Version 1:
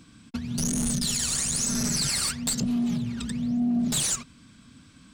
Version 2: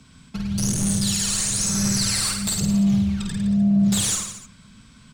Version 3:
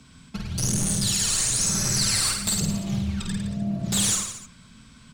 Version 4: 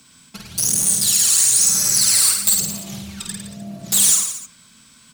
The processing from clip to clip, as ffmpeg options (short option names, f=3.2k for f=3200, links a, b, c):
-af "afreqshift=-40,aecho=1:1:50|105|165.5|232|305.3:0.631|0.398|0.251|0.158|0.1,volume=1.5dB"
-af "bandreject=f=50:t=h:w=6,bandreject=f=100:t=h:w=6,bandreject=f=150:t=h:w=6,bandreject=f=200:t=h:w=6"
-af "aemphasis=mode=production:type=bsi"